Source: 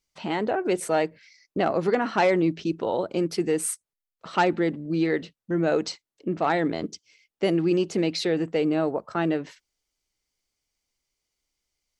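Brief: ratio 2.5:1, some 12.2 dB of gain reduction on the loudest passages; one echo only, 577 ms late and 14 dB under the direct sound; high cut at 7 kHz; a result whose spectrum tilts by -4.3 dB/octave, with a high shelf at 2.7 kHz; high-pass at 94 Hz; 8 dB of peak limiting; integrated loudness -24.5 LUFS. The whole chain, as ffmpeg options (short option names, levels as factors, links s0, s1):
-af "highpass=94,lowpass=7000,highshelf=f=2700:g=8,acompressor=threshold=0.0178:ratio=2.5,alimiter=level_in=1.12:limit=0.0631:level=0:latency=1,volume=0.891,aecho=1:1:577:0.2,volume=3.98"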